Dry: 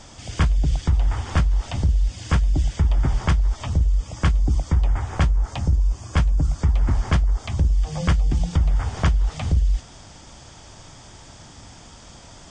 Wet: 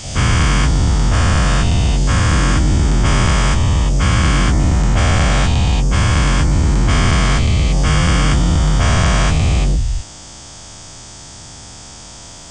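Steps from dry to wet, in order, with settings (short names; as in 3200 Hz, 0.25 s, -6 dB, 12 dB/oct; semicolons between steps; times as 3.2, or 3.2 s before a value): spectral dilation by 0.48 s; high shelf 5500 Hz +11.5 dB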